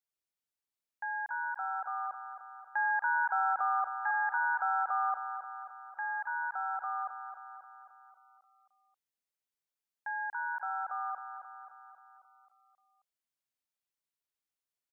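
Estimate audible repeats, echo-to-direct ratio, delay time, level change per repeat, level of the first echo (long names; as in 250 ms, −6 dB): 6, −7.0 dB, 267 ms, −4.5 dB, −9.0 dB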